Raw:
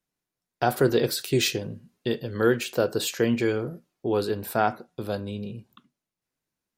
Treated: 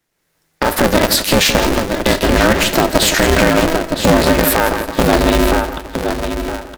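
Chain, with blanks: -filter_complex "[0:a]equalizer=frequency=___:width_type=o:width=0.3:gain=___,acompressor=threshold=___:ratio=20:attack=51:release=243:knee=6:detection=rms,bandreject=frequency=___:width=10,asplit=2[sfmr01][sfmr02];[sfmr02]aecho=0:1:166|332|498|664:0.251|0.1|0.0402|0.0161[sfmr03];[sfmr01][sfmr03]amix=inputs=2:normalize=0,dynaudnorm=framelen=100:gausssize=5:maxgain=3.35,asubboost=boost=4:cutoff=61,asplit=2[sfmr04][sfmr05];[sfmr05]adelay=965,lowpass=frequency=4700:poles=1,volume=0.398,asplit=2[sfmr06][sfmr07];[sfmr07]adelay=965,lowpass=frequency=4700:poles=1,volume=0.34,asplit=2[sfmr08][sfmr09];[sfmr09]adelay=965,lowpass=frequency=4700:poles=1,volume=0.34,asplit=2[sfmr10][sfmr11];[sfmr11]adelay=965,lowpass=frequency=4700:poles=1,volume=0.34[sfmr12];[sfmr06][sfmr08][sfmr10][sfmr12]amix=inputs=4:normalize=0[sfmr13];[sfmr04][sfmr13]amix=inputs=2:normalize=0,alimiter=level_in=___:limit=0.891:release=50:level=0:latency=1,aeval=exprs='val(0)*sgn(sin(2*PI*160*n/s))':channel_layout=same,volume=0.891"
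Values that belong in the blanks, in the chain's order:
1800, 8.5, 0.0316, 1100, 4.73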